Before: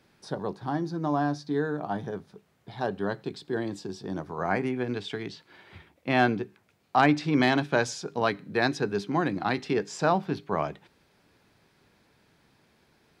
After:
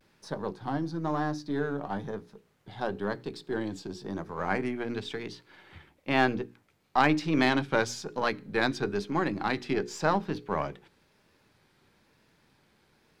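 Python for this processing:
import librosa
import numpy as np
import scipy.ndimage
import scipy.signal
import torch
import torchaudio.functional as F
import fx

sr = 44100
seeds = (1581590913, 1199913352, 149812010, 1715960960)

y = np.where(x < 0.0, 10.0 ** (-3.0 / 20.0) * x, x)
y = fx.notch(y, sr, hz=690.0, q=12.0)
y = fx.vibrato(y, sr, rate_hz=1.0, depth_cents=79.0)
y = fx.hum_notches(y, sr, base_hz=60, count=8)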